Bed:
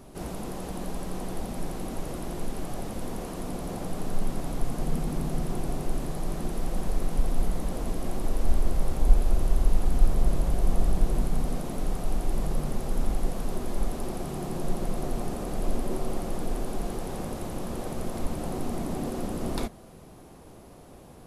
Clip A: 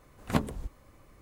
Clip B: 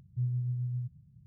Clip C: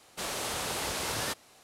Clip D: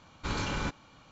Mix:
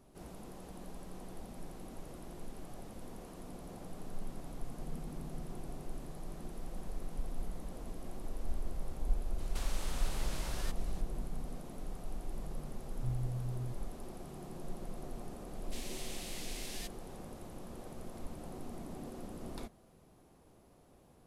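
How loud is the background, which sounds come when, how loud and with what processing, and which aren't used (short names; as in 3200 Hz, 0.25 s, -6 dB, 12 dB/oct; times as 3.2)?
bed -14 dB
9.38 add C + compressor, threshold -43 dBFS
12.86 add B -6 dB
15.54 add C -10.5 dB + steep high-pass 1900 Hz
not used: A, D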